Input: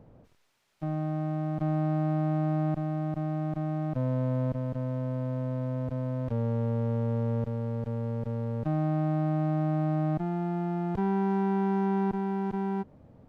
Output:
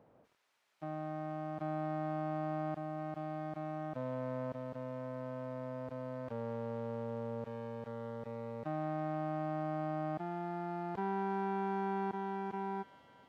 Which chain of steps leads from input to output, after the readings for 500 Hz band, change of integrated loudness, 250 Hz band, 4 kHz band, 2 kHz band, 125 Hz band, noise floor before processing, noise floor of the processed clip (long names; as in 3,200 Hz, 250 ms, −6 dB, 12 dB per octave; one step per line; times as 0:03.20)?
−6.0 dB, −10.0 dB, −11.5 dB, can't be measured, −2.5 dB, −15.5 dB, −56 dBFS, −66 dBFS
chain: high-pass filter 1,200 Hz 6 dB per octave
high-shelf EQ 2,200 Hz −11 dB
on a send: delay with a high-pass on its return 242 ms, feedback 83%, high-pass 2,500 Hz, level −8 dB
on the sum: level +3 dB